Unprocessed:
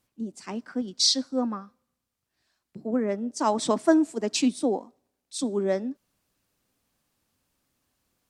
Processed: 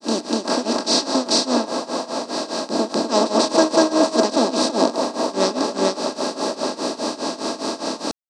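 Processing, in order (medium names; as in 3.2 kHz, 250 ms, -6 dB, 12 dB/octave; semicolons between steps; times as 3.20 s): spectral levelling over time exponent 0.2; feedback echo behind a band-pass 155 ms, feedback 84%, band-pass 750 Hz, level -6 dB; granulator 256 ms, grains 4.9 per s, spray 330 ms, pitch spread up and down by 0 st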